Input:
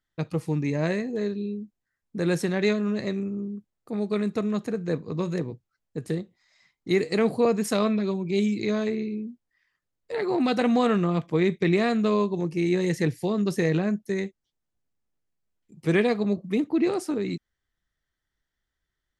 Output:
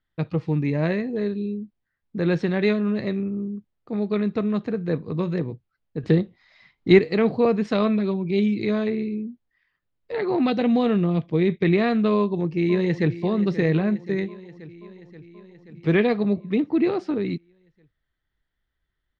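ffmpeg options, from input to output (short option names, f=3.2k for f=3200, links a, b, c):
-filter_complex "[0:a]asettb=1/sr,asplit=3[a][b][c];[a]atrim=end=6.034[d];[b]atrim=start=6.03:end=6.99,asetpts=PTS-STARTPTS,afade=t=in:d=0.004:c=qsin,afade=t=out:st=0.956:d=0.004:c=qsin,acontrast=90[e];[c]atrim=start=6.986[f];[d][e]acrossfade=d=0.004:c1=hsin:c2=qsin[g];[g][f]acrossfade=d=0.004:c1=qsin:c2=hsin,asettb=1/sr,asplit=3[h][i][j];[h]atrim=end=10.504[k];[i]atrim=start=10.5:end=11.48,asetpts=PTS-STARTPTS,afade=t=in:d=0.004:c=qsin,afade=t=out:st=0.976:d=0.004:c=qsin,equalizer=f=1.3k:t=o:w=1.4:g=-8[l];[j]atrim=start=11.476[m];[k][l]acrossfade=d=0.004:c1=hsin:c2=qsin[n];[n][m]acrossfade=d=0.004:c1=qsin:c2=hsin,asplit=2[o][p];[p]afade=t=in:st=12.16:d=0.01,afade=t=out:st=13.14:d=0.01,aecho=0:1:530|1060|1590|2120|2650|3180|3710|4240|4770:0.199526|0.139668|0.0977679|0.0684375|0.0479062|0.0335344|0.0234741|0.0164318|0.0115023[q];[o][q]amix=inputs=2:normalize=0,lowpass=f=4.1k:w=0.5412,lowpass=f=4.1k:w=1.3066,lowshelf=f=160:g=4.5,volume=1.5dB"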